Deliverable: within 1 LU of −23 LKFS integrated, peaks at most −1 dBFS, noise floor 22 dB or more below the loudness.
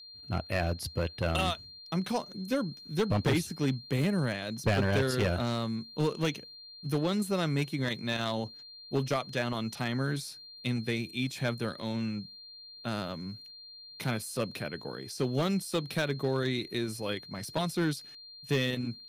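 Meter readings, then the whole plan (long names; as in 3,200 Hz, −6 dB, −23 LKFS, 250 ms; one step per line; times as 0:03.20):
share of clipped samples 0.6%; peaks flattened at −21.0 dBFS; interfering tone 4,200 Hz; level of the tone −47 dBFS; integrated loudness −32.0 LKFS; sample peak −21.0 dBFS; target loudness −23.0 LKFS
→ clipped peaks rebuilt −21 dBFS
notch filter 4,200 Hz, Q 30
level +9 dB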